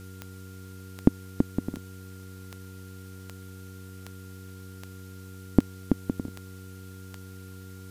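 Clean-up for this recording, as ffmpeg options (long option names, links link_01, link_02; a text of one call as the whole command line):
ffmpeg -i in.wav -af "adeclick=threshold=4,bandreject=frequency=94.1:width_type=h:width=4,bandreject=frequency=188.2:width_type=h:width=4,bandreject=frequency=282.3:width_type=h:width=4,bandreject=frequency=376.4:width_type=h:width=4,bandreject=frequency=470.5:width_type=h:width=4,bandreject=frequency=1400:width=30,afftdn=noise_reduction=30:noise_floor=-44" out.wav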